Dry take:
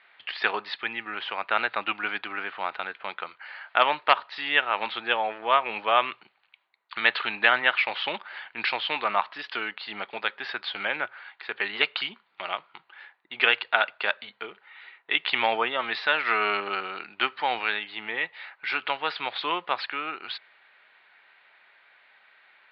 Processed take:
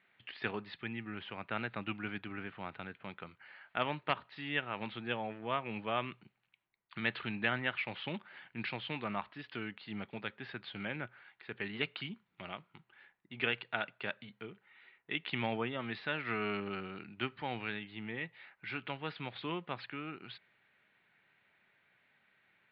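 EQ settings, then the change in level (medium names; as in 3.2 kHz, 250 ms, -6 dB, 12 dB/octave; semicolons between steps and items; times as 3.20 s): tone controls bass +15 dB, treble -14 dB; peaking EQ 1 kHz -15 dB 2.9 oct; treble shelf 4.2 kHz -9.5 dB; 0.0 dB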